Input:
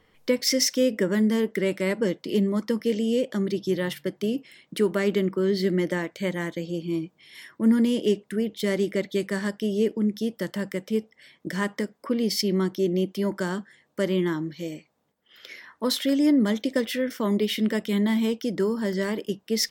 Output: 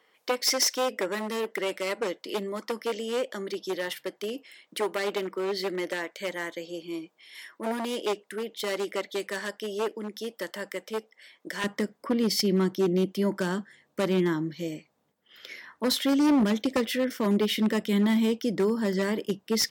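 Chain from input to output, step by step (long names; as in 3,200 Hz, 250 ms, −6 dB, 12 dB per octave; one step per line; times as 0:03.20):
wavefolder on the positive side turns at −18 dBFS
high-pass filter 470 Hz 12 dB per octave, from 0:11.64 78 Hz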